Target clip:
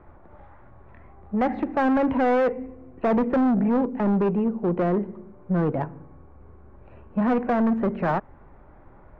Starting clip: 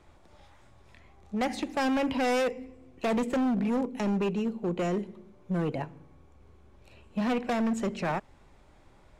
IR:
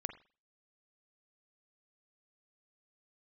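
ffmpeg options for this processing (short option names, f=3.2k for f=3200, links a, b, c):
-filter_complex "[0:a]lowpass=f=1.6k:w=0.5412,lowpass=f=1.6k:w=1.3066,aemphasis=mode=production:type=50fm,asplit=2[a][b];[b]asoftclip=type=tanh:threshold=-33dB,volume=-6dB[c];[a][c]amix=inputs=2:normalize=0,volume=5dB"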